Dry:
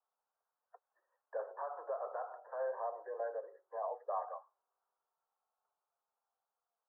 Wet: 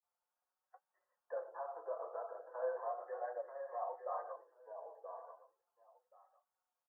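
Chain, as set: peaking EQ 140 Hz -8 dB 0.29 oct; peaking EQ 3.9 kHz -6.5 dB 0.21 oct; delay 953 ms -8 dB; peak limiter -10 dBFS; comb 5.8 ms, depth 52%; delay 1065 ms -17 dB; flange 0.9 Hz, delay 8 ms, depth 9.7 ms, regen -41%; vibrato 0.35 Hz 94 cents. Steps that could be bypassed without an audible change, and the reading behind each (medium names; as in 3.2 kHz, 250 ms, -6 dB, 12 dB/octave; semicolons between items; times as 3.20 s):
peaking EQ 140 Hz: input has nothing below 360 Hz; peaking EQ 3.9 kHz: input has nothing above 1.7 kHz; peak limiter -10 dBFS: peak at its input -26.0 dBFS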